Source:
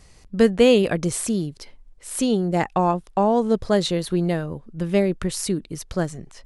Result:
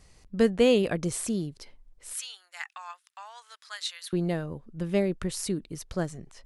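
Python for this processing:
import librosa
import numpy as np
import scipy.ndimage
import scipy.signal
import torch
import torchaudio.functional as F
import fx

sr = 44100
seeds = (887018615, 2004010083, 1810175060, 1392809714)

y = fx.cheby2_highpass(x, sr, hz=230.0, order=4, stop_db=80, at=(2.13, 4.13))
y = y * librosa.db_to_amplitude(-6.0)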